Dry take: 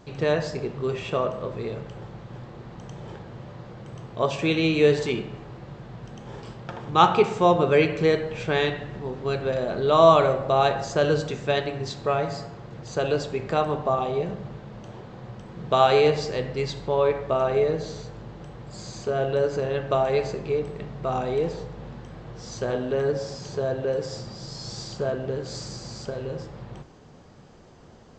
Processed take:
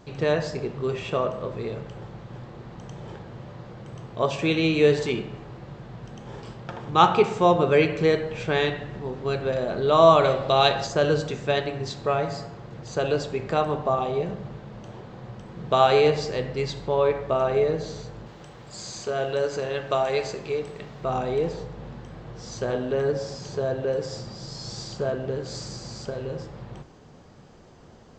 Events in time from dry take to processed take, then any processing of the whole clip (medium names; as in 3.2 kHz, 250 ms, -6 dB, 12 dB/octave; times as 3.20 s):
10.24–10.87 s: peaking EQ 3.7 kHz +10.5 dB 1.3 oct
18.26–21.04 s: tilt EQ +2 dB/octave